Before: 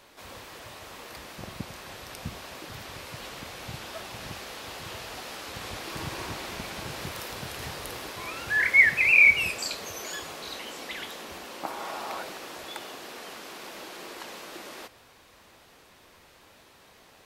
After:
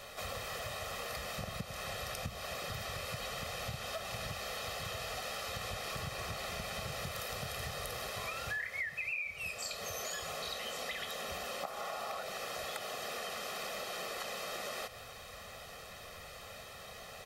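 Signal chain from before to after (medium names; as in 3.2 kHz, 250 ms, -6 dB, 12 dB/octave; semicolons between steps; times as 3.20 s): comb 1.6 ms, depth 85%; compression 10:1, threshold -41 dBFS, peak gain reduction 29 dB; trim +4 dB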